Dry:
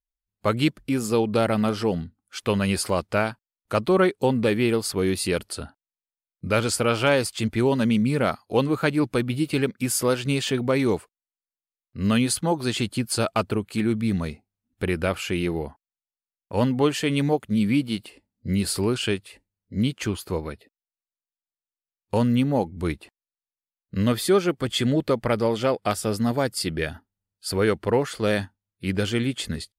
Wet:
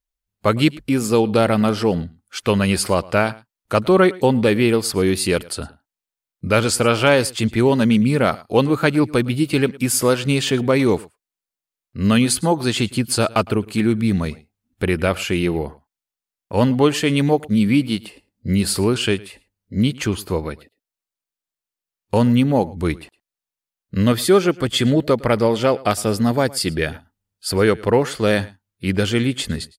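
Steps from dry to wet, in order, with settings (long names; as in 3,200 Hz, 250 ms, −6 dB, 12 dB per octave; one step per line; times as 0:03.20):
single-tap delay 109 ms −22 dB
level +5.5 dB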